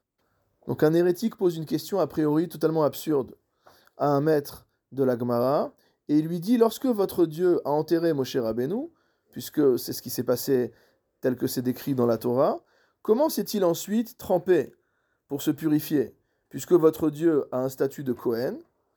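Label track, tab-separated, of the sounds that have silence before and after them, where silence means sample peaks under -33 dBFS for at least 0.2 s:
0.680000	3.240000	sound
4.000000	4.560000	sound
4.970000	5.670000	sound
6.090000	8.860000	sound
9.370000	10.670000	sound
11.240000	12.570000	sound
13.050000	14.650000	sound
15.310000	16.080000	sound
16.550000	18.560000	sound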